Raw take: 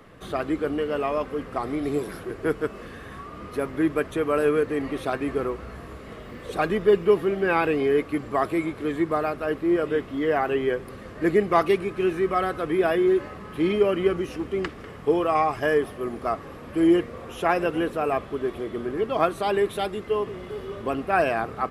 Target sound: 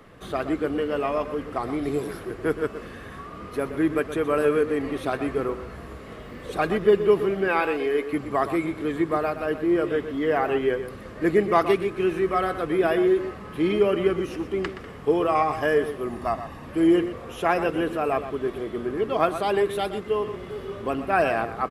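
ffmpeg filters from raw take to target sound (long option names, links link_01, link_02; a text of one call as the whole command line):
ffmpeg -i in.wav -filter_complex "[0:a]asettb=1/sr,asplit=3[link_01][link_02][link_03];[link_01]atrim=end=7.484[link_04];[link_02]atrim=start=7.48:end=8.13,asetpts=PTS-STARTPTS,afade=type=in:duration=0.004:curve=qsin,afade=type=out:start_time=0.646:duration=0.004:curve=qsin,equalizer=frequency=130:width=0.84:gain=-14.5[link_05];[link_03]atrim=start=8.126[link_06];[link_04][link_05]acrossfade=duration=0.004:curve1=hsin:curve2=qsin[link_07];[link_07][link_06]acrossfade=duration=0.004:curve1=qsin:curve2=hsin,asettb=1/sr,asplit=3[link_08][link_09][link_10];[link_08]atrim=end=16.094[link_11];[link_09]atrim=start=16.09:end=16.66,asetpts=PTS-STARTPTS,afade=type=in:duration=0.004:curve=qsin,afade=type=out:start_time=0.566:duration=0.004:curve=qsin,aecho=1:1:1.1:0.55,atrim=end_sample=25137[link_12];[link_10]atrim=start=16.656[link_13];[link_11][link_12]acrossfade=duration=0.004:curve1=hsin:curve2=qsin[link_14];[link_14][link_13]acrossfade=duration=0.004:curve1=qsin:curve2=hsin,asplit=2[link_15][link_16];[link_16]adelay=122.4,volume=-11dB,highshelf=frequency=4000:gain=-2.76[link_17];[link_15][link_17]amix=inputs=2:normalize=0" out.wav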